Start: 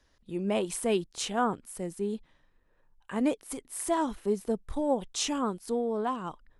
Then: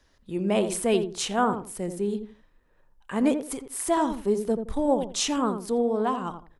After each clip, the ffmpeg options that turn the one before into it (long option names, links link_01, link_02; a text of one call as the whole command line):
ffmpeg -i in.wav -filter_complex "[0:a]asplit=2[link_01][link_02];[link_02]adelay=84,lowpass=frequency=890:poles=1,volume=-6.5dB,asplit=2[link_03][link_04];[link_04]adelay=84,lowpass=frequency=890:poles=1,volume=0.25,asplit=2[link_05][link_06];[link_06]adelay=84,lowpass=frequency=890:poles=1,volume=0.25[link_07];[link_01][link_03][link_05][link_07]amix=inputs=4:normalize=0,volume=4dB" out.wav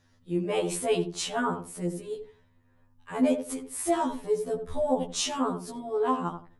ffmpeg -i in.wav -af "aeval=exprs='val(0)+0.00141*(sin(2*PI*50*n/s)+sin(2*PI*2*50*n/s)/2+sin(2*PI*3*50*n/s)/3+sin(2*PI*4*50*n/s)/4+sin(2*PI*5*50*n/s)/5)':channel_layout=same,afftfilt=real='re*2*eq(mod(b,4),0)':imag='im*2*eq(mod(b,4),0)':win_size=2048:overlap=0.75" out.wav